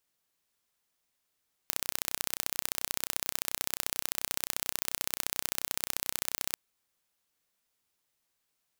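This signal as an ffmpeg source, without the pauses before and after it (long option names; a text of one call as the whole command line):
ffmpeg -f lavfi -i "aevalsrc='0.794*eq(mod(n,1404),0)*(0.5+0.5*eq(mod(n,2808),0))':duration=4.86:sample_rate=44100" out.wav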